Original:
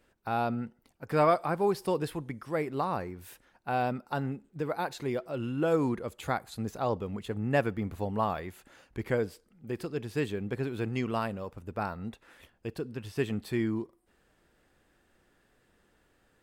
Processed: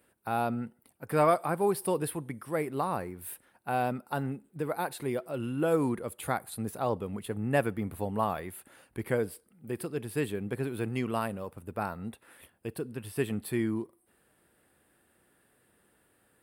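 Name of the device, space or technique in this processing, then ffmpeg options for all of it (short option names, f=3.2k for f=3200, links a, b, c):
budget condenser microphone: -af "highpass=81,highshelf=f=7.9k:t=q:w=3:g=7.5"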